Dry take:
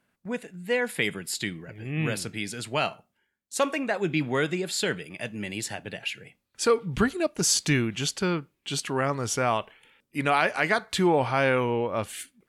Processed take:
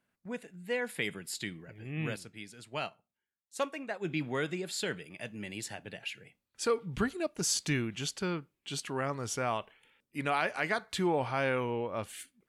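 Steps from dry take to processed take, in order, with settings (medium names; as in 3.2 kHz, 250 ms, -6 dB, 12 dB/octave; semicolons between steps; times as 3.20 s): 2.16–4.05 s: upward expansion 1.5:1, over -39 dBFS; trim -7.5 dB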